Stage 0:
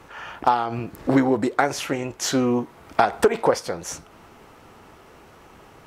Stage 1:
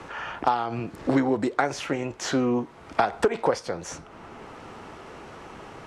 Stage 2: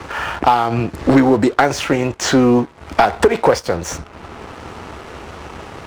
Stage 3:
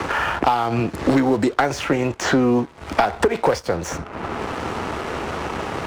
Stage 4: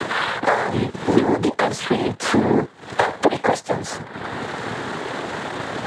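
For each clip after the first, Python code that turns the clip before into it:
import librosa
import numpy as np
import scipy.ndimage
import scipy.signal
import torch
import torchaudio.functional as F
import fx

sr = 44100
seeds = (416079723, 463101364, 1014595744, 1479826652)

y1 = scipy.signal.sosfilt(scipy.signal.bessel(8, 7400.0, 'lowpass', norm='mag', fs=sr, output='sos'), x)
y1 = fx.band_squash(y1, sr, depth_pct=40)
y1 = F.gain(torch.from_numpy(y1), -3.0).numpy()
y2 = fx.peak_eq(y1, sr, hz=72.0, db=12.0, octaves=0.65)
y2 = fx.leveller(y2, sr, passes=2)
y2 = F.gain(torch.from_numpy(y2), 4.0).numpy()
y3 = fx.band_squash(y2, sr, depth_pct=70)
y3 = F.gain(torch.from_numpy(y3), -4.5).numpy()
y4 = fx.noise_vocoder(y3, sr, seeds[0], bands=6)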